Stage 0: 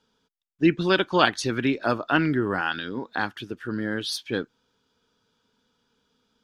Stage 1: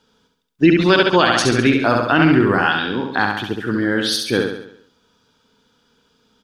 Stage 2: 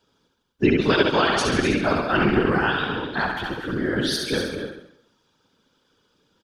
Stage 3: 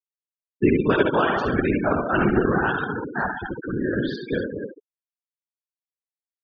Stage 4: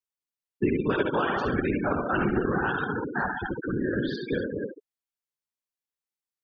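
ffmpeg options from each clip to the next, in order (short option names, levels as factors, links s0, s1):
-filter_complex "[0:a]asplit=2[s0][s1];[s1]aecho=0:1:68|136|204|272|340|408|476:0.596|0.304|0.155|0.079|0.0403|0.0206|0.0105[s2];[s0][s2]amix=inputs=2:normalize=0,alimiter=level_in=3.16:limit=0.891:release=50:level=0:latency=1,volume=0.841"
-af "aecho=1:1:157.4|250.7:0.251|0.355,afftfilt=real='hypot(re,im)*cos(2*PI*random(0))':imag='hypot(re,im)*sin(2*PI*random(1))':win_size=512:overlap=0.75"
-af "afftfilt=real='re*gte(hypot(re,im),0.0794)':imag='im*gte(hypot(re,im),0.0794)':win_size=1024:overlap=0.75,lowpass=2100"
-af "bandreject=f=650:w=12,acompressor=threshold=0.0501:ratio=2"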